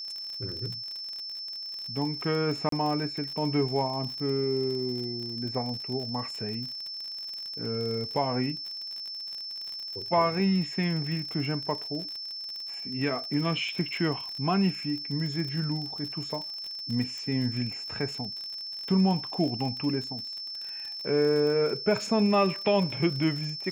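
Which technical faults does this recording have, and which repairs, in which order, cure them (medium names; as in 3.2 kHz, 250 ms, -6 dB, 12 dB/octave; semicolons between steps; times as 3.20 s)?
crackle 47 per s -34 dBFS
whine 5.3 kHz -35 dBFS
2.69–2.72 s: dropout 33 ms
17.18 s: pop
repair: de-click; band-stop 5.3 kHz, Q 30; interpolate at 2.69 s, 33 ms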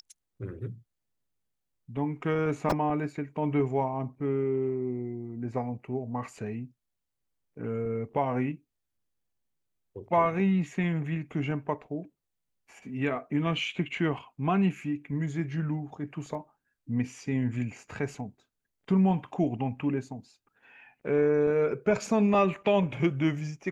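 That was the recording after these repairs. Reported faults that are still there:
nothing left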